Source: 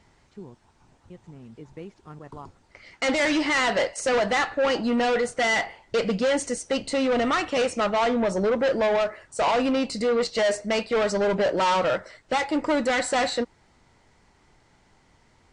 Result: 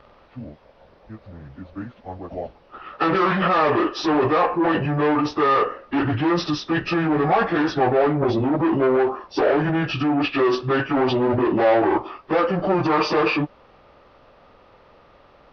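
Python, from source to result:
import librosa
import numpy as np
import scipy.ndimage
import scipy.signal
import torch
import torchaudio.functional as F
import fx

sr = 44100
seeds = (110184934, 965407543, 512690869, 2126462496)

p1 = fx.pitch_bins(x, sr, semitones=-8.5)
p2 = fx.bass_treble(p1, sr, bass_db=-4, treble_db=-8)
p3 = fx.over_compress(p2, sr, threshold_db=-30.0, ratio=-0.5)
p4 = p2 + (p3 * 10.0 ** (-1.0 / 20.0))
y = fx.curve_eq(p4, sr, hz=(180.0, 690.0, 4100.0), db=(0, 7, 1))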